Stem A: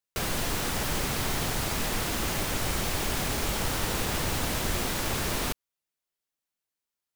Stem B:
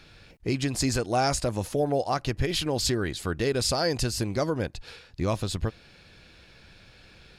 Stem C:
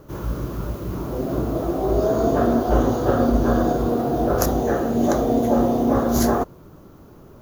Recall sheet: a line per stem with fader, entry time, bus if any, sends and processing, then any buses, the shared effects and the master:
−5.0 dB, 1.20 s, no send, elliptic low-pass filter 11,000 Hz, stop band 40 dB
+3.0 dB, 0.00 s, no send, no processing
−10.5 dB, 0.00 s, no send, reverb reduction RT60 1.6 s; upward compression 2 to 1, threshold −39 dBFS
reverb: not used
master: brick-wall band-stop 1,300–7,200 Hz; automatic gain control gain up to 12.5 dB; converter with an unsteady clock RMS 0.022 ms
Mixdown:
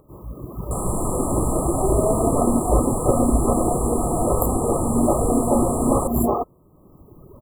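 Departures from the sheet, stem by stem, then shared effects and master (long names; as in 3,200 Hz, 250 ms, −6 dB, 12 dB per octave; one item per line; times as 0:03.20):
stem A: entry 1.20 s → 0.55 s
stem B: muted
master: missing converter with an unsteady clock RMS 0.022 ms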